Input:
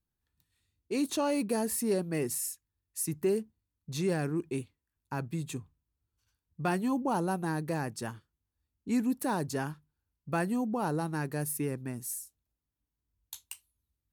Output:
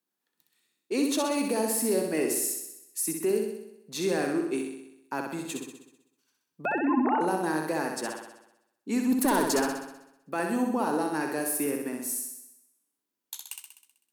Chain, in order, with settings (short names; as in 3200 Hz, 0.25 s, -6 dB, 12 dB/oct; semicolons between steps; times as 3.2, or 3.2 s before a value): 6.65–7.21 sine-wave speech; HPF 240 Hz 24 dB/oct; 9.12–9.6 sample leveller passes 2; limiter -24 dBFS, peak gain reduction 6 dB; flutter echo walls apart 10.9 m, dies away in 0.85 s; gain +4.5 dB